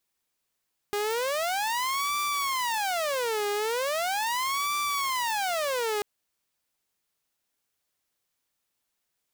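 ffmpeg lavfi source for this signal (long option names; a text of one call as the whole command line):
ffmpeg -f lavfi -i "aevalsrc='0.0668*(2*mod((790*t-380/(2*PI*0.39)*sin(2*PI*0.39*t)),1)-1)':duration=5.09:sample_rate=44100" out.wav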